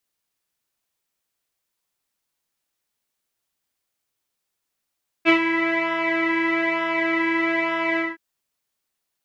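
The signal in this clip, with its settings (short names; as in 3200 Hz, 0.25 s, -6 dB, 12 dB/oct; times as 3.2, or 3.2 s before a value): synth patch with pulse-width modulation E4, interval +19 st, detune 25 cents, sub -29 dB, noise -22 dB, filter lowpass, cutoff 1800 Hz, Q 6.2, filter envelope 0.5 oct, filter sustain 50%, attack 40 ms, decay 0.10 s, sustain -9 dB, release 0.19 s, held 2.73 s, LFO 1.1 Hz, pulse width 31%, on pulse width 16%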